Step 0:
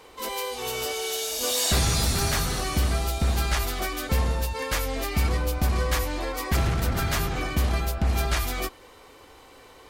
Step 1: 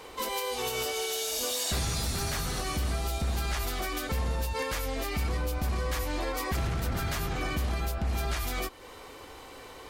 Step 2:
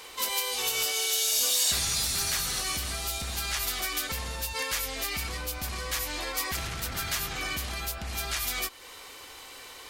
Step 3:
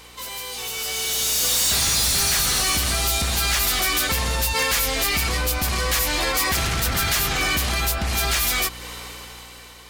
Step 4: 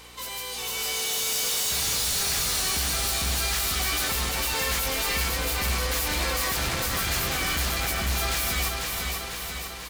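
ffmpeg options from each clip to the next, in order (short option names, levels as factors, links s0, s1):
-af "alimiter=level_in=1.26:limit=0.0631:level=0:latency=1:release=272,volume=0.794,volume=1.5"
-af "tiltshelf=f=1300:g=-8"
-af "asoftclip=type=hard:threshold=0.0299,aeval=exprs='val(0)+0.00282*(sin(2*PI*60*n/s)+sin(2*PI*2*60*n/s)/2+sin(2*PI*3*60*n/s)/3+sin(2*PI*4*60*n/s)/4+sin(2*PI*5*60*n/s)/5)':c=same,dynaudnorm=f=250:g=9:m=4.22"
-filter_complex "[0:a]asoftclip=type=hard:threshold=0.0562,asplit=2[s0][s1];[s1]aecho=0:1:495|990|1485|1980|2475|2970|3465|3960:0.631|0.372|0.22|0.13|0.0765|0.0451|0.0266|0.0157[s2];[s0][s2]amix=inputs=2:normalize=0,volume=0.794"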